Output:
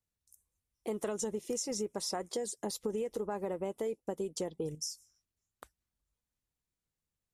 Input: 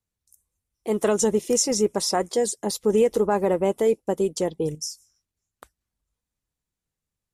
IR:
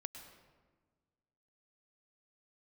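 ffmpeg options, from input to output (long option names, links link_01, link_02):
-af "acompressor=threshold=-28dB:ratio=6,volume=-5dB"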